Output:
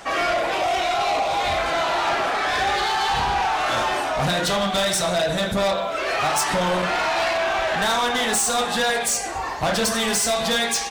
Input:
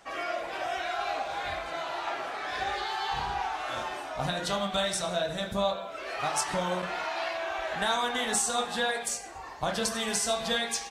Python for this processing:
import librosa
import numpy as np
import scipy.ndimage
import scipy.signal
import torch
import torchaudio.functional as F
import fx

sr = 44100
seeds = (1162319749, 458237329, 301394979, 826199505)

p1 = fx.peak_eq(x, sr, hz=1600.0, db=-13.0, octaves=0.32, at=(0.54, 1.57))
p2 = fx.rider(p1, sr, range_db=4, speed_s=0.5)
p3 = p1 + F.gain(torch.from_numpy(p2), 2.5).numpy()
p4 = 10.0 ** (-24.0 / 20.0) * np.tanh(p3 / 10.0 ** (-24.0 / 20.0))
y = F.gain(torch.from_numpy(p4), 6.5).numpy()